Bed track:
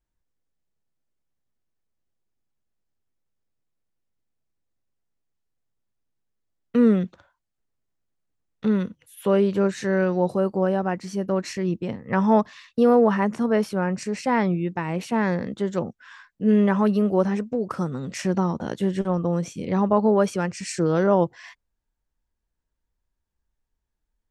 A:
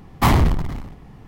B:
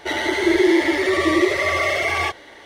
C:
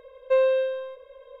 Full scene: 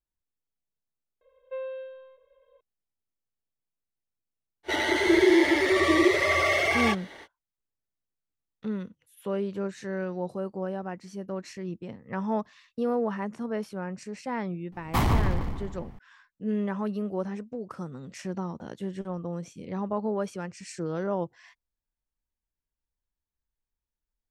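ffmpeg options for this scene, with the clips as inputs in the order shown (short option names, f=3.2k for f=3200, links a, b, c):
-filter_complex "[0:a]volume=-10.5dB[a];[3:a]aresample=8000,aresample=44100[b];[1:a]asplit=2[c][d];[d]adelay=147,lowpass=f=4.8k:p=1,volume=-5.5dB,asplit=2[e][f];[f]adelay=147,lowpass=f=4.8k:p=1,volume=0.51,asplit=2[g][h];[h]adelay=147,lowpass=f=4.8k:p=1,volume=0.51,asplit=2[i][j];[j]adelay=147,lowpass=f=4.8k:p=1,volume=0.51,asplit=2[k][l];[l]adelay=147,lowpass=f=4.8k:p=1,volume=0.51,asplit=2[m][n];[n]adelay=147,lowpass=f=4.8k:p=1,volume=0.51[o];[c][e][g][i][k][m][o]amix=inputs=7:normalize=0[p];[b]atrim=end=1.4,asetpts=PTS-STARTPTS,volume=-15dB,afade=t=in:d=0.004:c=hsin,afade=t=out:st=1.396:d=0.004:c=hsin,adelay=1210[q];[2:a]atrim=end=2.65,asetpts=PTS-STARTPTS,volume=-3.5dB,afade=t=in:d=0.05,afade=t=out:st=2.6:d=0.05,adelay=4630[r];[p]atrim=end=1.27,asetpts=PTS-STARTPTS,volume=-9dB,afade=t=in:d=0.004:c=hsin,afade=t=out:st=1.266:d=0.004:c=hsin,adelay=14720[s];[a][q][r][s]amix=inputs=4:normalize=0"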